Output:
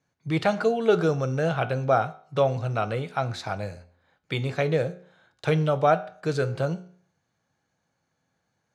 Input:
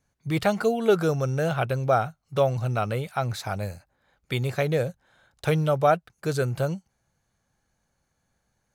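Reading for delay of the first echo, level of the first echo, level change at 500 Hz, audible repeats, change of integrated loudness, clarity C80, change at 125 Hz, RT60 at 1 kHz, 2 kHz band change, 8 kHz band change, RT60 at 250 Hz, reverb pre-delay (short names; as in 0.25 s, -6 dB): none, none, +0.5 dB, none, 0.0 dB, 20.0 dB, -1.0 dB, 0.50 s, +0.5 dB, -5.0 dB, 0.50 s, 5 ms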